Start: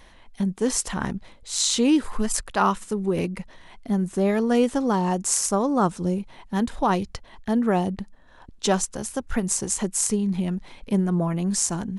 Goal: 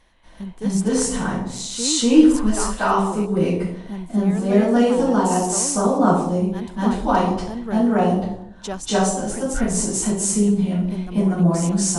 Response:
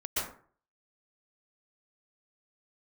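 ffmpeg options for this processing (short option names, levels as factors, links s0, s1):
-filter_complex "[1:a]atrim=start_sample=2205,afade=t=out:st=0.39:d=0.01,atrim=end_sample=17640,asetrate=22050,aresample=44100[s0];[0:a][s0]afir=irnorm=-1:irlink=0,volume=0.422"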